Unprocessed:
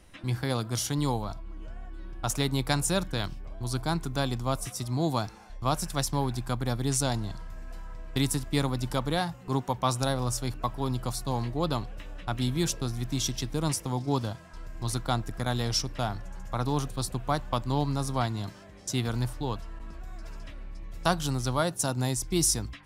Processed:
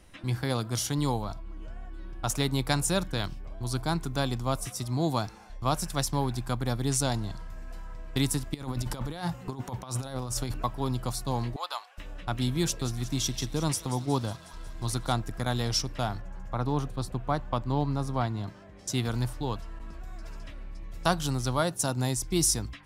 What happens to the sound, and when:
8.54–10.63 negative-ratio compressor -32 dBFS, ratio -0.5
11.56–11.98 HPF 780 Hz 24 dB/oct
12.61–15.19 thin delay 0.182 s, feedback 65%, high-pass 1500 Hz, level -12.5 dB
16.2–18.79 bell 12000 Hz -11 dB 2.6 oct

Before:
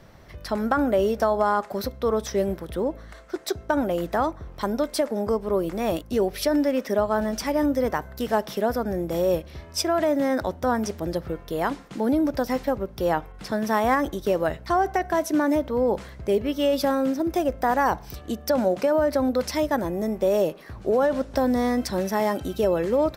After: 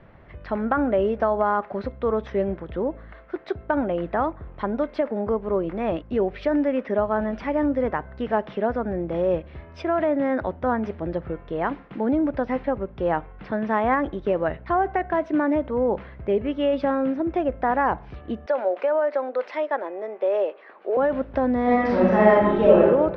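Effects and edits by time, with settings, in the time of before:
18.46–20.97 HPF 410 Hz 24 dB/oct
21.63–22.79 reverb throw, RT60 1.1 s, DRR -7 dB
whole clip: LPF 2700 Hz 24 dB/oct

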